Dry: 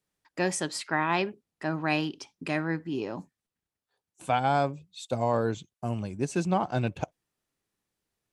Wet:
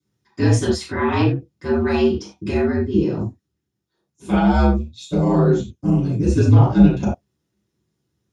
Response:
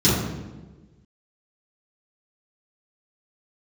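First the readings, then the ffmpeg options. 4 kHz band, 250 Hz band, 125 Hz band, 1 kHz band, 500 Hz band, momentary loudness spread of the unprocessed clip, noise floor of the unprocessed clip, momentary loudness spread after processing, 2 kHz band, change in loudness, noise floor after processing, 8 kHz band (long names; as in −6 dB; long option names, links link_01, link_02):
+4.5 dB, +14.5 dB, +16.5 dB, +3.0 dB, +10.0 dB, 12 LU, below −85 dBFS, 11 LU, +3.0 dB, +11.5 dB, −78 dBFS, can't be measured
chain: -filter_complex "[0:a]aeval=exprs='val(0)*sin(2*PI*73*n/s)':channel_layout=same[link_01];[1:a]atrim=start_sample=2205,afade=type=out:start_time=0.15:duration=0.01,atrim=end_sample=7056[link_02];[link_01][link_02]afir=irnorm=-1:irlink=0,volume=-10dB"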